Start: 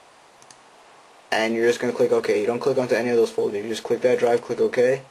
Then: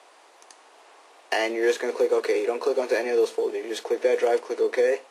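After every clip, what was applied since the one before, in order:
Butterworth high-pass 300 Hz 36 dB per octave
level −2.5 dB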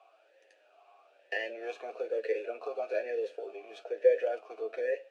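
parametric band 830 Hz −4.5 dB 2.3 octaves
flanger 0.41 Hz, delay 8.9 ms, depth 1.4 ms, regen +34%
formant filter swept between two vowels a-e 1.1 Hz
level +6.5 dB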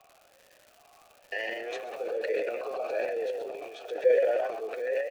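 echo with shifted repeats 129 ms, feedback 31%, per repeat +44 Hz, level −6 dB
transient designer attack −1 dB, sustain +11 dB
surface crackle 260 per second −44 dBFS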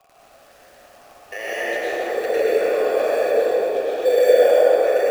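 in parallel at −8 dB: decimation without filtering 11×
on the sum: dense smooth reverb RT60 4.1 s, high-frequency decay 0.45×, pre-delay 85 ms, DRR −9 dB

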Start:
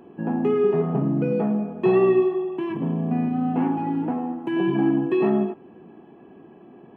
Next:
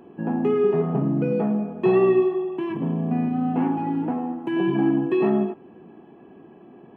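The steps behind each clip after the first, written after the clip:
no processing that can be heard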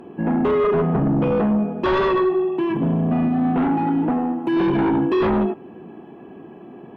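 sine wavefolder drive 9 dB, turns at −9 dBFS
level −6 dB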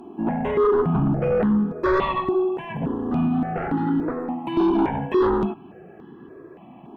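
step-sequenced phaser 3.5 Hz 510–2,400 Hz
level +1 dB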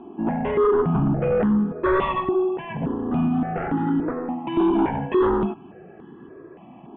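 Butterworth low-pass 3,500 Hz 72 dB per octave

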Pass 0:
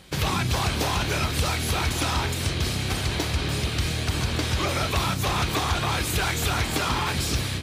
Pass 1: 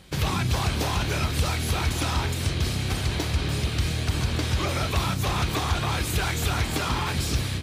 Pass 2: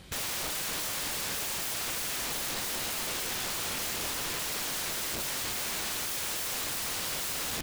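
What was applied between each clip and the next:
low-shelf EQ 210 Hz +4.5 dB; level −2.5 dB
wrap-around overflow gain 29 dB

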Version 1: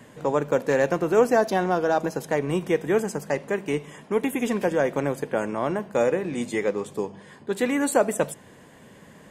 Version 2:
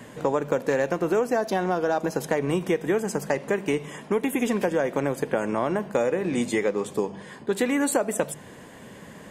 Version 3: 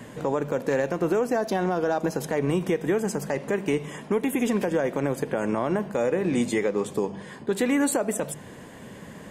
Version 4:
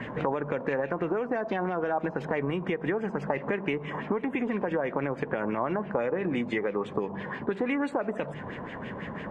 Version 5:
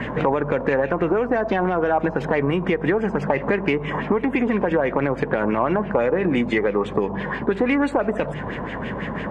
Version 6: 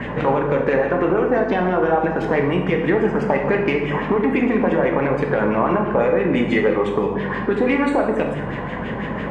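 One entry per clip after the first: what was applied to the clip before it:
mains-hum notches 50/100/150 Hz; downward compressor 6 to 1, threshold −25 dBFS, peak gain reduction 11.5 dB; level +5 dB
low-shelf EQ 320 Hz +3.5 dB; brickwall limiter −14.5 dBFS, peak gain reduction 7 dB
downward compressor 6 to 1, threshold −31 dBFS, peak gain reduction 11.5 dB; auto-filter low-pass sine 6 Hz 960–2,700 Hz; level +4 dB
soft clipping −14 dBFS, distortion −27 dB; mains hum 50 Hz, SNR 20 dB; level +9 dB
convolution reverb RT60 1.1 s, pre-delay 16 ms, DRR 2 dB; one half of a high-frequency compander decoder only

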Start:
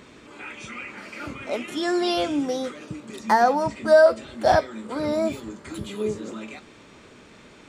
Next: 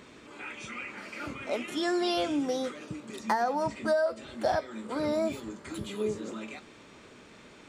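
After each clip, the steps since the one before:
low-shelf EQ 140 Hz −3.5 dB
downward compressor 6 to 1, threshold −21 dBFS, peak gain reduction 10.5 dB
level −3 dB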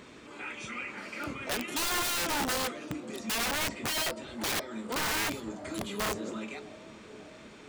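delay with a low-pass on its return 543 ms, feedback 68%, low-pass 820 Hz, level −19 dB
wrap-around overflow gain 27 dB
level +1 dB

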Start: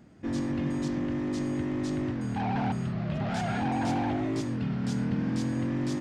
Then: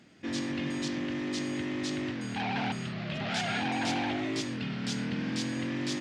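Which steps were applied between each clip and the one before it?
meter weighting curve D
level −2 dB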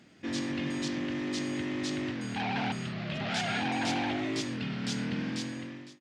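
fade-out on the ending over 0.82 s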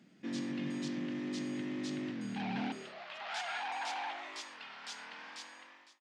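high-pass filter sweep 180 Hz → 920 Hz, 0:02.57–0:03.08
level −8.5 dB

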